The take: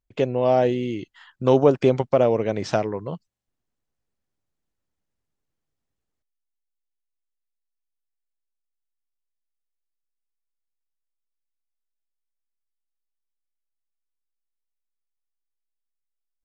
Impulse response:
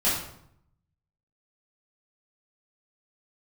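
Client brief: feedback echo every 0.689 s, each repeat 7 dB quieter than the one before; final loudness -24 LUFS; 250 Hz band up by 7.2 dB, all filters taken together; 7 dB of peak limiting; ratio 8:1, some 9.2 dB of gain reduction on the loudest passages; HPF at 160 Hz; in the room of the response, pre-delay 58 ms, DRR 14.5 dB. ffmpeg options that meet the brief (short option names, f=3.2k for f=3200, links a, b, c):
-filter_complex "[0:a]highpass=160,equalizer=f=250:t=o:g=9,acompressor=threshold=-17dB:ratio=8,alimiter=limit=-14dB:level=0:latency=1,aecho=1:1:689|1378|2067|2756|3445:0.447|0.201|0.0905|0.0407|0.0183,asplit=2[a][b];[1:a]atrim=start_sample=2205,adelay=58[c];[b][c]afir=irnorm=-1:irlink=0,volume=-27dB[d];[a][d]amix=inputs=2:normalize=0,volume=1dB"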